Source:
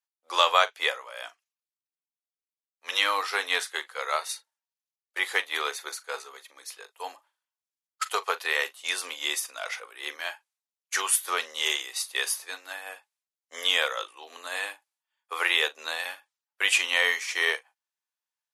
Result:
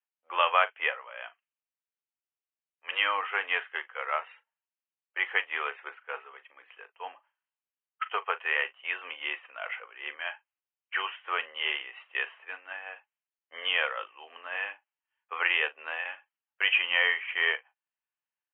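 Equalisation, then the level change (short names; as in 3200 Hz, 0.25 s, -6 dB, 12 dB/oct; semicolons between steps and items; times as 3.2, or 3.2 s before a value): Chebyshev low-pass 3100 Hz, order 8; low shelf 400 Hz -11.5 dB; 0.0 dB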